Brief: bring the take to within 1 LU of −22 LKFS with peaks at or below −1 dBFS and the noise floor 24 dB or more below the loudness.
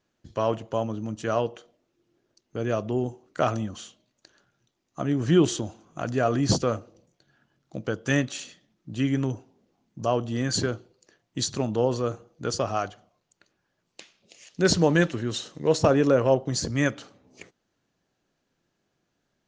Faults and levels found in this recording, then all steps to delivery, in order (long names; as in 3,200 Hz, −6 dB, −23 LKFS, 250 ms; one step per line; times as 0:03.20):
integrated loudness −26.0 LKFS; sample peak −6.5 dBFS; target loudness −22.0 LKFS
→ level +4 dB